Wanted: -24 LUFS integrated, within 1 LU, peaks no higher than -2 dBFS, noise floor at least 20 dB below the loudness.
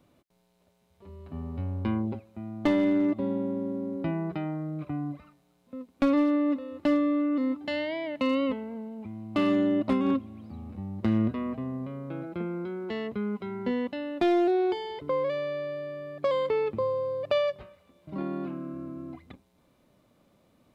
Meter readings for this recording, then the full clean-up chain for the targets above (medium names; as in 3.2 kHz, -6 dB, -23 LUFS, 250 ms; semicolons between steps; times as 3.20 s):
clipped samples 0.5%; clipping level -18.0 dBFS; loudness -29.0 LUFS; peak level -18.0 dBFS; loudness target -24.0 LUFS
-> clip repair -18 dBFS; trim +5 dB